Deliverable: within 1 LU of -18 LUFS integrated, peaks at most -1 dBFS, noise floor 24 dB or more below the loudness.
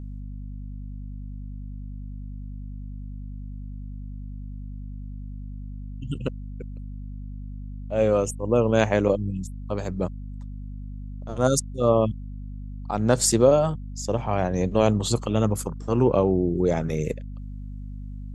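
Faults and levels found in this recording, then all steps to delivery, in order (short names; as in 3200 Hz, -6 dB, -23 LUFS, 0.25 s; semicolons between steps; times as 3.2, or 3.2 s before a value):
hum 50 Hz; harmonics up to 250 Hz; hum level -33 dBFS; loudness -23.5 LUFS; peak -3.5 dBFS; loudness target -18.0 LUFS
-> notches 50/100/150/200/250 Hz; gain +5.5 dB; limiter -1 dBFS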